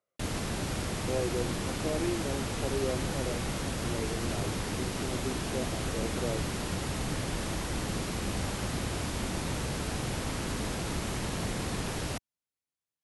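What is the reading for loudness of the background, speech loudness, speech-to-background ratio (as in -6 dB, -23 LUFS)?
-33.5 LUFS, -38.0 LUFS, -4.5 dB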